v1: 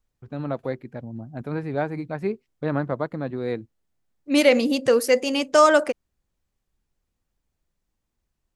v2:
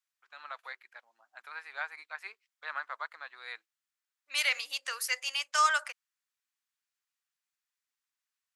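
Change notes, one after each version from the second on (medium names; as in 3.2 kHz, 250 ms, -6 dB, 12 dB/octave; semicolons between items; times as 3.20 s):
second voice -4.0 dB; master: add high-pass 1.2 kHz 24 dB/octave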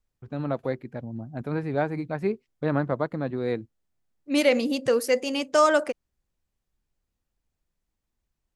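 master: remove high-pass 1.2 kHz 24 dB/octave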